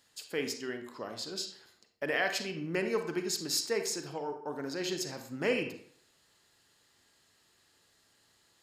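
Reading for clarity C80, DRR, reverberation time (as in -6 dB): 11.5 dB, 5.5 dB, 0.60 s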